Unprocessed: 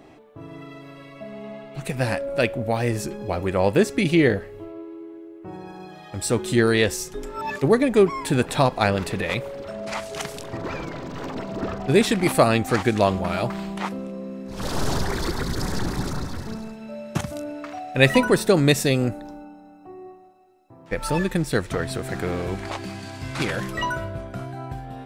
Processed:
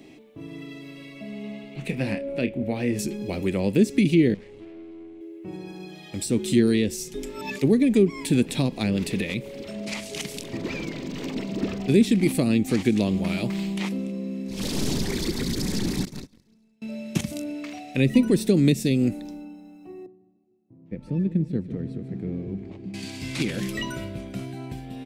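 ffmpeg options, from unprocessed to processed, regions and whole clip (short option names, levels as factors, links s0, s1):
-filter_complex "[0:a]asettb=1/sr,asplit=3[s0][s1][s2];[s0]atrim=end=1.744[s3];[s1]atrim=start=1.74:end=2.99,asetpts=PTS-STARTPTS,afade=t=in:d=0.004:c=qsin,afade=t=out:st=1.246:d=0.004:c=qsin,bass=f=250:g=-2,treble=f=4000:g=-14,asplit=2[s4][s5];[s5]adelay=29,volume=0.316[s6];[s4][s6]amix=inputs=2:normalize=0,atrim=end_sample=55125[s7];[s2]atrim=start=2.986[s8];[s3][s7]acrossfade=d=0.004:c1=hsin:c2=qsin[s9];[s9][s8]acrossfade=d=0.004:c1=qsin:c2=hsin,asettb=1/sr,asplit=3[s10][s11][s12];[s10]atrim=end=4.344[s13];[s11]atrim=start=4.34:end=5.21,asetpts=PTS-STARTPTS,afade=t=in:d=0.004:c=qsin,afade=t=out:st=0.866:d=0.004:c=qsin,lowpass=f=8800:w=0.5412,lowpass=f=8800:w=1.3066,aeval=exprs='(tanh(89.1*val(0)+0.65)-tanh(0.65))/89.1':c=same[s14];[s12]atrim=start=5.206[s15];[s13][s14]acrossfade=d=0.004:c1=hsin:c2=qsin[s16];[s16][s15]acrossfade=d=0.004:c1=qsin:c2=hsin,asettb=1/sr,asplit=3[s17][s18][s19];[s17]atrim=end=16.054[s20];[s18]atrim=start=16.05:end=16.82,asetpts=PTS-STARTPTS,afade=t=in:d=0.004:c=qsin,afade=t=out:st=0.766:d=0.004:c=qsin,agate=range=0.0282:threshold=0.0501:ratio=16:release=100:detection=peak,asoftclip=type=hard:threshold=0.0422[s21];[s19]atrim=start=16.816[s22];[s20][s21]acrossfade=d=0.004:c1=hsin:c2=qsin[s23];[s23][s22]acrossfade=d=0.004:c1=qsin:c2=hsin,asettb=1/sr,asplit=3[s24][s25][s26];[s24]atrim=end=20.064[s27];[s25]atrim=start=20.06:end=22.94,asetpts=PTS-STARTPTS,afade=t=in:d=0.004:c=qsin,afade=t=out:st=2.876:d=0.004:c=qsin,bandpass=f=140:t=q:w=0.97,aecho=1:1:150|300|450|600|750|900:0.211|0.127|0.0761|0.0457|0.0274|0.0164,atrim=end_sample=127008[s28];[s26]atrim=start=22.936[s29];[s27][s28]acrossfade=d=0.004:c1=hsin:c2=qsin[s30];[s30][s29]acrossfade=d=0.004:c1=qsin:c2=hsin,firequalizer=gain_entry='entry(100,0);entry(210,10);entry(690,-3);entry(1400,-6);entry(2200,9)':delay=0.05:min_phase=1,acrossover=split=400[s31][s32];[s32]acompressor=threshold=0.0631:ratio=10[s33];[s31][s33]amix=inputs=2:normalize=0,volume=0.562"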